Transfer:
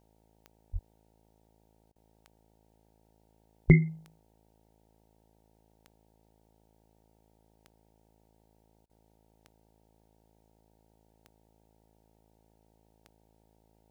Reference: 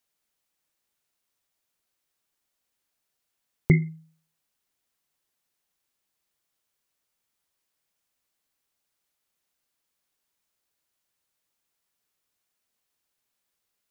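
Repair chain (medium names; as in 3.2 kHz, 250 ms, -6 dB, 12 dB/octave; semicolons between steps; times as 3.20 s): de-click; de-hum 54.4 Hz, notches 17; de-plosive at 0.72/3.67 s; interpolate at 1.92/8.86 s, 35 ms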